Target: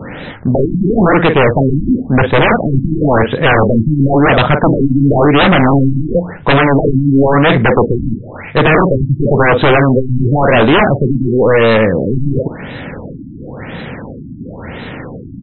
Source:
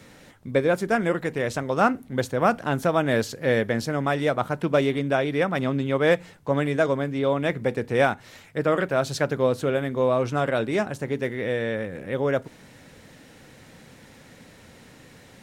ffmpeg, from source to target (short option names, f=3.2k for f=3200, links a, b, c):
-filter_complex "[0:a]asplit=2[a][b];[b]adelay=45,volume=-13dB[c];[a][c]amix=inputs=2:normalize=0,aeval=exprs='0.501*sin(PI/2*7.94*val(0)/0.501)':c=same,afftfilt=real='re*lt(b*sr/1024,320*pow(4100/320,0.5+0.5*sin(2*PI*0.96*pts/sr)))':imag='im*lt(b*sr/1024,320*pow(4100/320,0.5+0.5*sin(2*PI*0.96*pts/sr)))':win_size=1024:overlap=0.75,volume=1.5dB"